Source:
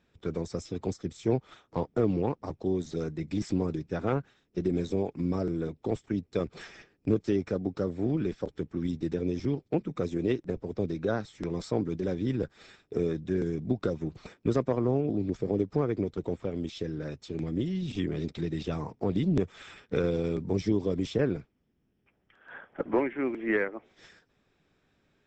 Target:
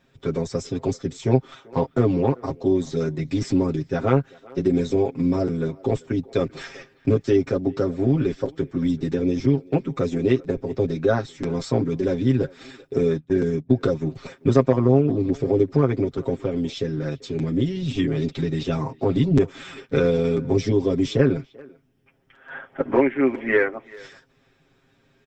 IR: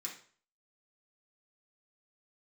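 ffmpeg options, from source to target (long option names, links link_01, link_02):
-filter_complex "[0:a]asplit=3[link_01][link_02][link_03];[link_01]afade=type=out:start_time=13.09:duration=0.02[link_04];[link_02]agate=range=-27dB:threshold=-31dB:ratio=16:detection=peak,afade=type=in:start_time=13.09:duration=0.02,afade=type=out:start_time=13.72:duration=0.02[link_05];[link_03]afade=type=in:start_time=13.72:duration=0.02[link_06];[link_04][link_05][link_06]amix=inputs=3:normalize=0,aecho=1:1:7.5:0.86,asplit=2[link_07][link_08];[link_08]adelay=390,highpass=300,lowpass=3400,asoftclip=type=hard:threshold=-17dB,volume=-22dB[link_09];[link_07][link_09]amix=inputs=2:normalize=0,volume=6dB"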